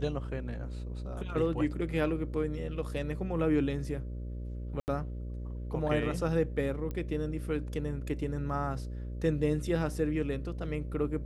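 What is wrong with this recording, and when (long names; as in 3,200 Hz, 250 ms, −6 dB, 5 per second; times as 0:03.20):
mains buzz 60 Hz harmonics 10 −38 dBFS
0:04.80–0:04.88: drop-out 79 ms
0:06.91: click −25 dBFS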